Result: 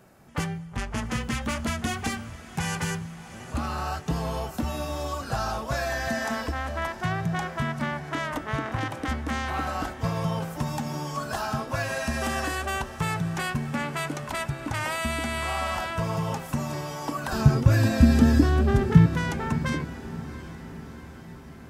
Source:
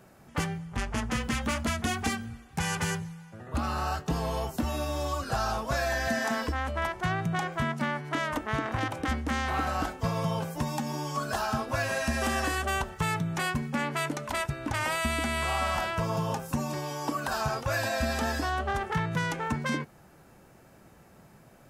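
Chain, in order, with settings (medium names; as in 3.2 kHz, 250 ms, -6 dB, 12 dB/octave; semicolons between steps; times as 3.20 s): 17.32–19.06 s: resonant low shelf 450 Hz +13 dB, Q 1.5; on a send: echo that smears into a reverb 706 ms, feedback 63%, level -15 dB; on the sum: dynamic bell 130 Hz, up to +4 dB, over -38 dBFS, Q 1.7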